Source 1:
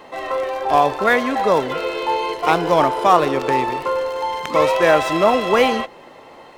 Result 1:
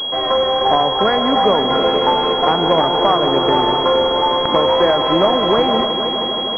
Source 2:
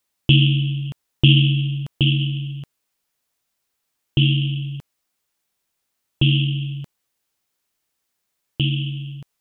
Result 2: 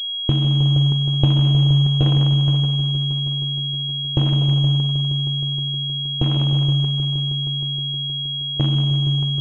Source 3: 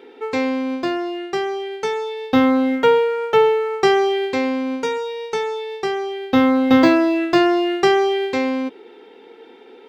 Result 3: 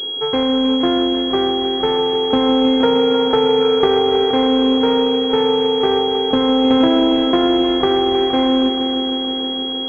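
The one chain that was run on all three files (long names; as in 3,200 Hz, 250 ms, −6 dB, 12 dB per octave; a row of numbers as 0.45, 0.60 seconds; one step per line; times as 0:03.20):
downward compressor 6 to 1, threshold −19 dBFS
decimation without filtering 7×
echo machine with several playback heads 157 ms, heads all three, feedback 73%, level −14 dB
switching amplifier with a slow clock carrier 3,300 Hz
normalise the peak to −1.5 dBFS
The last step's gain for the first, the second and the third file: +7.5, +4.0, +5.5 decibels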